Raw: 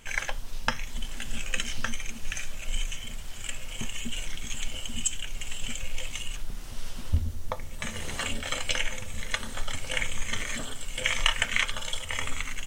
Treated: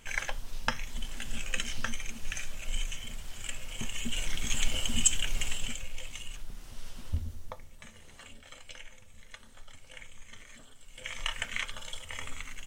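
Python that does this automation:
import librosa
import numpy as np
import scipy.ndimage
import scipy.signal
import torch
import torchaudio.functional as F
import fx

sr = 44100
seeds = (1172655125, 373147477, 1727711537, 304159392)

y = fx.gain(x, sr, db=fx.line((3.78, -3.0), (4.55, 4.0), (5.42, 4.0), (5.89, -7.0), (7.34, -7.0), (8.02, -19.0), (10.75, -19.0), (11.34, -8.5)))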